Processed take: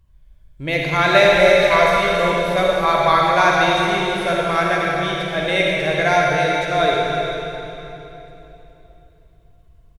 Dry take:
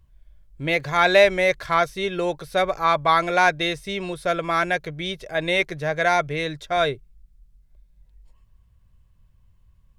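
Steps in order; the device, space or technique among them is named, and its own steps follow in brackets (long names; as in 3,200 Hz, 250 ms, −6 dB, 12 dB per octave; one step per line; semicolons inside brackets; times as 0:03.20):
0:01.33–0:02.26: comb filter 4.1 ms, depth 87%
cave (single-tap delay 318 ms −9.5 dB; convolution reverb RT60 3.3 s, pre-delay 45 ms, DRR −3 dB)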